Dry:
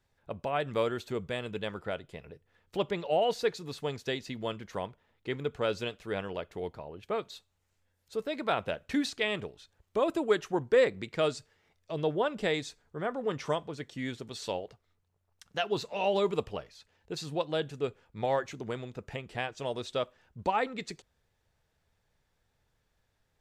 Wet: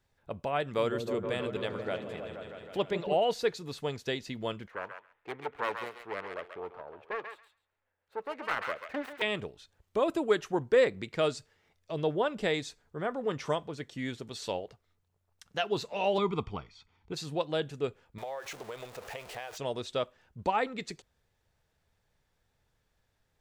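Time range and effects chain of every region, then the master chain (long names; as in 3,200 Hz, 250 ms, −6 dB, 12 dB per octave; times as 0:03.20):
0:00.62–0:03.15: low-shelf EQ 73 Hz −9 dB + echo whose low-pass opens from repeat to repeat 158 ms, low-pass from 400 Hz, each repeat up 1 octave, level −3 dB
0:04.68–0:09.22: phase distortion by the signal itself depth 0.76 ms + three-way crossover with the lows and the highs turned down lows −14 dB, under 400 Hz, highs −23 dB, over 2,400 Hz + feedback echo with a high-pass in the loop 136 ms, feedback 17%, high-pass 1,200 Hz, level −4 dB
0:16.18–0:17.13: high-frequency loss of the air 120 metres + comb filter 0.9 ms, depth 76%
0:18.18–0:19.58: converter with a step at zero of −40.5 dBFS + low shelf with overshoot 380 Hz −12 dB, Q 1.5 + downward compressor 5 to 1, threshold −36 dBFS
whole clip: no processing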